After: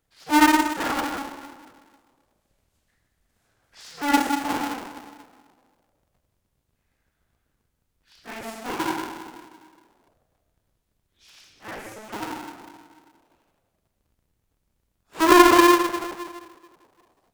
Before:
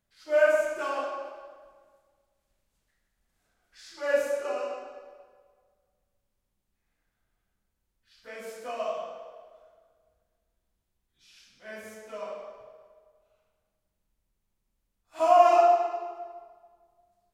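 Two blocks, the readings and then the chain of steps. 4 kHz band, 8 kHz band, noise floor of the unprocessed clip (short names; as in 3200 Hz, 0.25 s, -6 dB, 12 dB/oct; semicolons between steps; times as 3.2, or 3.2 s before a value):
+16.5 dB, +16.0 dB, -80 dBFS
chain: cycle switcher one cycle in 2, inverted; gain +5 dB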